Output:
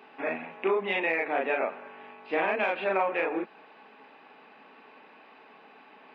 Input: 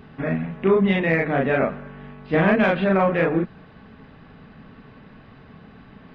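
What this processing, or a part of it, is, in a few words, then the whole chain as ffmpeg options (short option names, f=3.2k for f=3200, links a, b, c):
laptop speaker: -af "highpass=f=320:w=0.5412,highpass=f=320:w=1.3066,equalizer=f=860:t=o:w=0.45:g=9,equalizer=f=2.5k:t=o:w=0.36:g=10,alimiter=limit=-11.5dB:level=0:latency=1:release=305,volume=-5dB"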